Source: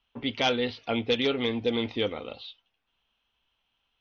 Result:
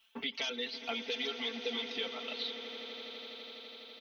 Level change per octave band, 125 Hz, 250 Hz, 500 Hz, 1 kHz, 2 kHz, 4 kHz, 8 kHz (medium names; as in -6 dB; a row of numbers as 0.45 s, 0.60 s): under -25 dB, -14.0 dB, -12.0 dB, -11.0 dB, -5.5 dB, -3.5 dB, no reading